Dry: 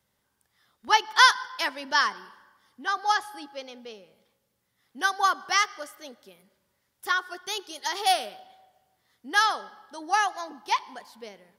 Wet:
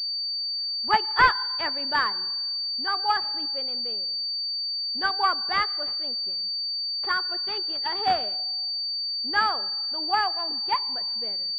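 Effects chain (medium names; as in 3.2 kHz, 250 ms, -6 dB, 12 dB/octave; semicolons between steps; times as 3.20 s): class-D stage that switches slowly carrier 4.6 kHz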